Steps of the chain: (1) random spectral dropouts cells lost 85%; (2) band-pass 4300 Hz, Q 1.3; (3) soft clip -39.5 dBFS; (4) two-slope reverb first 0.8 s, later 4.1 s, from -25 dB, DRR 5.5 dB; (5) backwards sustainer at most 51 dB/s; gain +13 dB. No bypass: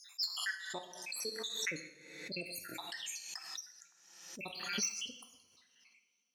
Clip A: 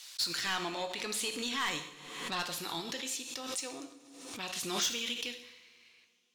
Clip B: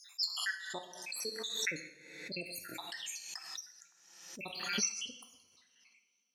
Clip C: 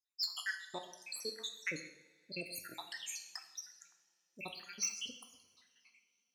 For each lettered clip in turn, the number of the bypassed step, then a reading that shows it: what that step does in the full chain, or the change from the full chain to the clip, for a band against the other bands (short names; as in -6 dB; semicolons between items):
1, 1 kHz band +5.5 dB; 3, distortion -16 dB; 5, crest factor change +2.0 dB